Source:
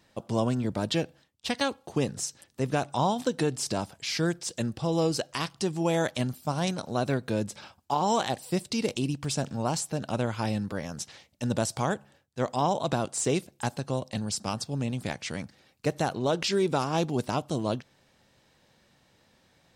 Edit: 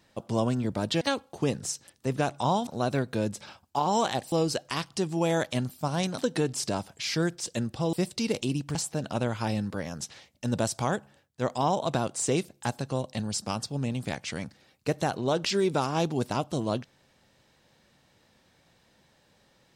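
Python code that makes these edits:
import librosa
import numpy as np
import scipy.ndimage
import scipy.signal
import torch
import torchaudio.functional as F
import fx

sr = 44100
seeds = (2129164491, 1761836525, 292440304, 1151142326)

y = fx.edit(x, sr, fx.cut(start_s=1.01, length_s=0.54),
    fx.swap(start_s=3.21, length_s=1.75, other_s=6.82, other_length_s=1.65),
    fx.cut(start_s=9.29, length_s=0.44), tone=tone)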